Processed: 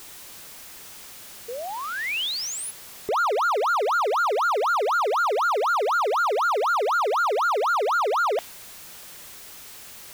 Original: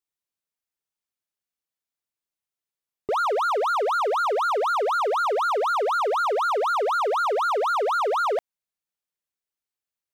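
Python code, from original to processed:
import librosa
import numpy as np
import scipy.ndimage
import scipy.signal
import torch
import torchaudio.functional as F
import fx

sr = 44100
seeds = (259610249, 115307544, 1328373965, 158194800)

y = x + 0.5 * 10.0 ** (-33.0 / 20.0) * np.sign(x)
y = fx.spec_paint(y, sr, seeds[0], shape='rise', start_s=1.48, length_s=1.23, low_hz=450.0, high_hz=11000.0, level_db=-31.0)
y = fx.dynamic_eq(y, sr, hz=2900.0, q=0.9, threshold_db=-40.0, ratio=4.0, max_db=6)
y = y * 10.0 ** (-1.5 / 20.0)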